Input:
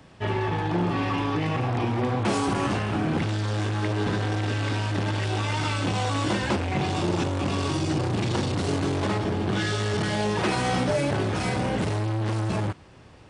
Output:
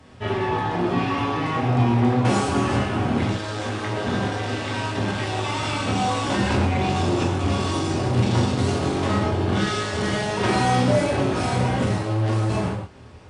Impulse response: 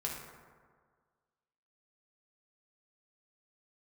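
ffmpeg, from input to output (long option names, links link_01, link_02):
-filter_complex "[1:a]atrim=start_sample=2205,afade=type=out:start_time=0.13:duration=0.01,atrim=end_sample=6174,asetrate=23814,aresample=44100[link_01];[0:a][link_01]afir=irnorm=-1:irlink=0,volume=-1.5dB"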